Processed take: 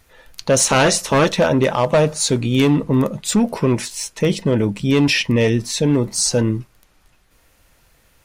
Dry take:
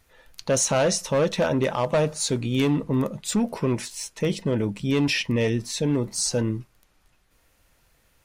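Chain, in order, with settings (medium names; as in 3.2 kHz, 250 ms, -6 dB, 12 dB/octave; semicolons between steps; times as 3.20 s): 0.58–1.31 s: spectral peaks clipped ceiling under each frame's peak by 13 dB; trim +7 dB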